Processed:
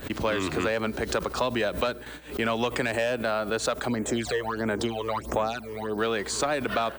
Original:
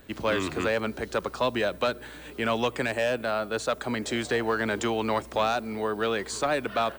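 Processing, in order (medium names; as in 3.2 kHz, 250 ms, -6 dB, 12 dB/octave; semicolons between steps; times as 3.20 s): gate with hold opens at -31 dBFS; compression, threshold -26 dBFS, peak gain reduction 5.5 dB; 3.88–5.98 s: phase shifter stages 12, 1.5 Hz, lowest notch 230–4700 Hz; swell ahead of each attack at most 140 dB/s; trim +3.5 dB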